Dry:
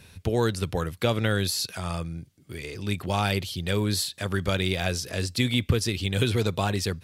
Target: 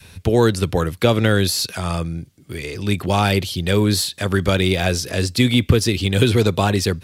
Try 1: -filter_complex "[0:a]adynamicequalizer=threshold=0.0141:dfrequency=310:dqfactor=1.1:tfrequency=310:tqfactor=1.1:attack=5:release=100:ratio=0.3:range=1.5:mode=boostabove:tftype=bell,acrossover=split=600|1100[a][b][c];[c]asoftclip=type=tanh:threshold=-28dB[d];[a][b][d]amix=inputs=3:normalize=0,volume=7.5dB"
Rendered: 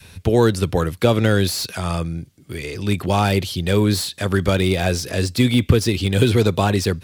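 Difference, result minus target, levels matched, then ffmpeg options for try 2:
soft clip: distortion +11 dB
-filter_complex "[0:a]adynamicequalizer=threshold=0.0141:dfrequency=310:dqfactor=1.1:tfrequency=310:tqfactor=1.1:attack=5:release=100:ratio=0.3:range=1.5:mode=boostabove:tftype=bell,acrossover=split=600|1100[a][b][c];[c]asoftclip=type=tanh:threshold=-18dB[d];[a][b][d]amix=inputs=3:normalize=0,volume=7.5dB"

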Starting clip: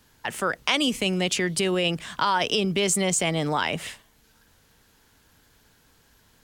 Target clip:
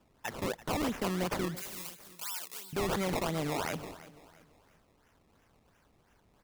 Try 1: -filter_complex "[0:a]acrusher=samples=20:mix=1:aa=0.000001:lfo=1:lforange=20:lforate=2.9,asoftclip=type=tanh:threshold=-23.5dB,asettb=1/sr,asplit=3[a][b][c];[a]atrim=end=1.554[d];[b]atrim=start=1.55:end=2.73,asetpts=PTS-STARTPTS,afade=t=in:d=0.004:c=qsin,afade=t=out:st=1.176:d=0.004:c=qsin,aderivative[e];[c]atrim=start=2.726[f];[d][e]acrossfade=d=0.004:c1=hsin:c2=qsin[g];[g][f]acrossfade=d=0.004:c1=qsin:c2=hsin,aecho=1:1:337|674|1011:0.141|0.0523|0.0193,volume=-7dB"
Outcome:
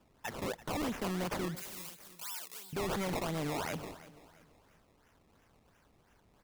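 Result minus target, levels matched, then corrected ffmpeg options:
soft clip: distortion +8 dB
-filter_complex "[0:a]acrusher=samples=20:mix=1:aa=0.000001:lfo=1:lforange=20:lforate=2.9,asoftclip=type=tanh:threshold=-16dB,asettb=1/sr,asplit=3[a][b][c];[a]atrim=end=1.554[d];[b]atrim=start=1.55:end=2.73,asetpts=PTS-STARTPTS,afade=t=in:d=0.004:c=qsin,afade=t=out:st=1.176:d=0.004:c=qsin,aderivative[e];[c]atrim=start=2.726[f];[d][e]acrossfade=d=0.004:c1=hsin:c2=qsin[g];[g][f]acrossfade=d=0.004:c1=qsin:c2=hsin,aecho=1:1:337|674|1011:0.141|0.0523|0.0193,volume=-7dB"

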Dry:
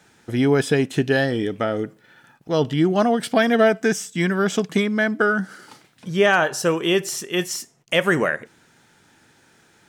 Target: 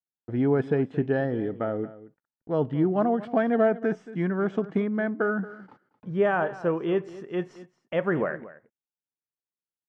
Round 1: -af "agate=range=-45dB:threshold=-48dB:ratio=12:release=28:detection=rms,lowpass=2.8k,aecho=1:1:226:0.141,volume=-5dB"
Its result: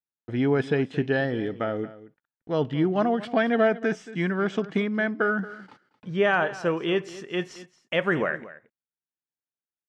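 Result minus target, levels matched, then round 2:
2000 Hz band +5.5 dB
-af "agate=range=-45dB:threshold=-48dB:ratio=12:release=28:detection=rms,lowpass=1.2k,aecho=1:1:226:0.141,volume=-5dB"

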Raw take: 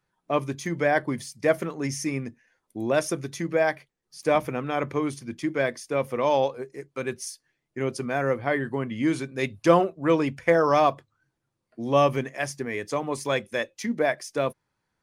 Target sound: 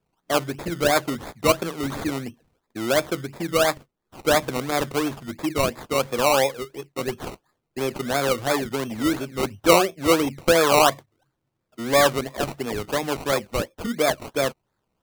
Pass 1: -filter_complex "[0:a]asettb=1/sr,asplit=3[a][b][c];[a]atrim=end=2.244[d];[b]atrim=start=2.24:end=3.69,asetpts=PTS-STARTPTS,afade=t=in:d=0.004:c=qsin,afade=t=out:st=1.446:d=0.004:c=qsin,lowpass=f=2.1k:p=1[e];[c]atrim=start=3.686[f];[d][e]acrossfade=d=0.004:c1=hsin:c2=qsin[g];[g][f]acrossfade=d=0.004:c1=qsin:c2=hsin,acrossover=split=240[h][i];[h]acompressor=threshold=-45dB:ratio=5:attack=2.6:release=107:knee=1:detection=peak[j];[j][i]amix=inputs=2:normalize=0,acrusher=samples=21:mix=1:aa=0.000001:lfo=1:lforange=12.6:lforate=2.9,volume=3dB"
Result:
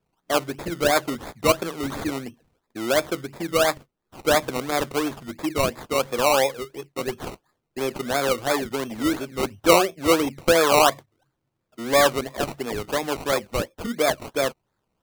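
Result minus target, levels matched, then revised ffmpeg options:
compressor: peak gain reduction +6.5 dB
-filter_complex "[0:a]asettb=1/sr,asplit=3[a][b][c];[a]atrim=end=2.244[d];[b]atrim=start=2.24:end=3.69,asetpts=PTS-STARTPTS,afade=t=in:d=0.004:c=qsin,afade=t=out:st=1.446:d=0.004:c=qsin,lowpass=f=2.1k:p=1[e];[c]atrim=start=3.686[f];[d][e]acrossfade=d=0.004:c1=hsin:c2=qsin[g];[g][f]acrossfade=d=0.004:c1=qsin:c2=hsin,acrossover=split=240[h][i];[h]acompressor=threshold=-37dB:ratio=5:attack=2.6:release=107:knee=1:detection=peak[j];[j][i]amix=inputs=2:normalize=0,acrusher=samples=21:mix=1:aa=0.000001:lfo=1:lforange=12.6:lforate=2.9,volume=3dB"

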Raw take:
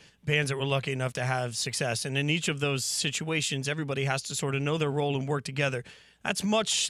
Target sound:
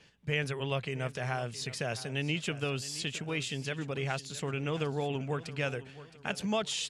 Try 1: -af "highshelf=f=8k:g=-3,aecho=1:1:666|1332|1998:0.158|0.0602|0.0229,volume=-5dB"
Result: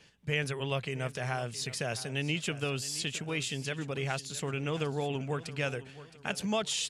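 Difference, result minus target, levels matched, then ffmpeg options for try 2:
8000 Hz band +3.0 dB
-af "highshelf=f=8k:g=-11,aecho=1:1:666|1332|1998:0.158|0.0602|0.0229,volume=-5dB"

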